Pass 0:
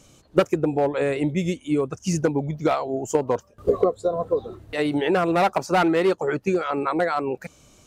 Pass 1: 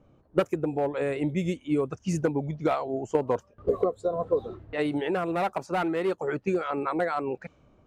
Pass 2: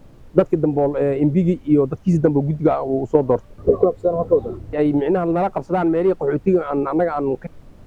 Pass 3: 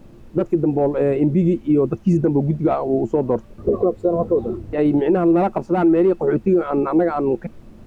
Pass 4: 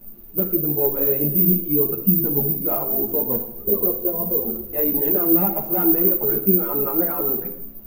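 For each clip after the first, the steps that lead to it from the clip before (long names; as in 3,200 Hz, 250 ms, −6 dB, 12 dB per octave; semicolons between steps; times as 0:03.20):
low-pass that shuts in the quiet parts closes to 1,100 Hz, open at −18.5 dBFS; dynamic equaliser 5,300 Hz, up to −6 dB, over −49 dBFS, Q 1.2; speech leveller within 4 dB 0.5 s; level −5 dB
tilt shelving filter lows +9.5 dB, about 1,300 Hz; background noise brown −46 dBFS; level +2.5 dB
hollow resonant body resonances 220/340/2,600 Hz, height 10 dB, ringing for 100 ms; brickwall limiter −8.5 dBFS, peak gain reduction 12 dB
convolution reverb RT60 0.85 s, pre-delay 5 ms, DRR 4.5 dB; bad sample-rate conversion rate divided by 3×, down none, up zero stuff; string-ensemble chorus; level −5 dB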